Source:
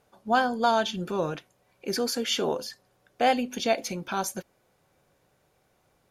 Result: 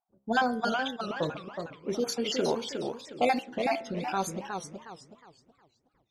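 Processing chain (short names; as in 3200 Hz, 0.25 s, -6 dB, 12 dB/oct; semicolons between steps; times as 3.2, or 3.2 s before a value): random spectral dropouts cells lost 41%; de-hum 67.14 Hz, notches 32; low-pass opened by the level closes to 310 Hz, open at -24.5 dBFS; warbling echo 0.367 s, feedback 33%, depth 189 cents, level -6 dB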